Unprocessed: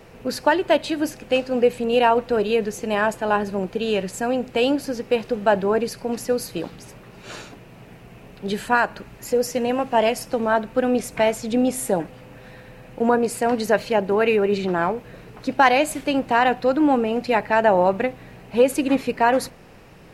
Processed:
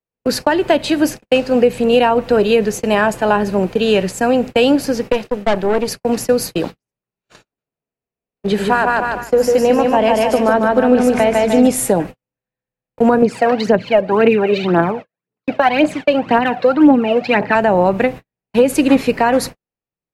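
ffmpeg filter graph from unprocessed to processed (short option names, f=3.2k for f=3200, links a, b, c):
-filter_complex "[0:a]asettb=1/sr,asplit=3[a][b][c];[a]atrim=end=5.124[d];[b]atrim=start=5.12:end=5.88,asetpts=PTS-STARTPTS,afade=t=in:d=0.004:c=qsin,afade=t=out:st=0.756:d=0.004:c=qsin,equalizer=f=65:w=0.74:g=-11,bandreject=f=1k:w=8.2,aeval=exprs='(tanh(7.94*val(0)+0.7)-tanh(0.7))/7.94':c=same[e];[c]atrim=start=5.876[f];[d][e]acrossfade=d=0.004:c1=hsin:c2=qsin[g];[g][f]acrossfade=d=0.004:c1=qsin:c2=hsin,asettb=1/sr,asplit=3[h][i][j];[h]atrim=end=7.434[k];[i]atrim=start=7.43:end=11.67,asetpts=PTS-STARTPTS,afade=t=in:d=0.004:c=qsin,afade=t=out:st=4.236:d=0.004:c=qsin,highshelf=f=3.9k:g=-8,bandreject=f=60:t=h:w=6,bandreject=f=120:t=h:w=6,bandreject=f=180:t=h:w=6,bandreject=f=240:t=h:w=6,bandreject=f=300:t=h:w=6,aecho=1:1:150|300|450|600|750|900:0.708|0.304|0.131|0.0563|0.0242|0.0104,atrim=end_sample=186984[l];[j]atrim=start=11.666[m];[k][l]acrossfade=d=0.004:c1=hsin:c2=qsin[n];[n][m]acrossfade=d=0.004:c1=qsin:c2=hsin,asettb=1/sr,asplit=3[o][p][q];[o]atrim=end=13.224[r];[p]atrim=start=13.22:end=17.55,asetpts=PTS-STARTPTS,afade=t=in:d=0.004:c=qsin,afade=t=out:st=4.326:d=0.004:c=qsin,highpass=190,lowpass=3.4k,aphaser=in_gain=1:out_gain=1:delay=1.9:decay=0.65:speed=1.9:type=triangular[s];[q]atrim=start=17.546[t];[r][s]acrossfade=d=0.004:c1=hsin:c2=qsin[u];[u][t]acrossfade=d=0.004:c1=qsin:c2=hsin,agate=range=-55dB:threshold=-32dB:ratio=16:detection=peak,acrossover=split=290[v][w];[w]acompressor=threshold=-19dB:ratio=6[x];[v][x]amix=inputs=2:normalize=0,alimiter=level_in=10dB:limit=-1dB:release=50:level=0:latency=1,volume=-1dB"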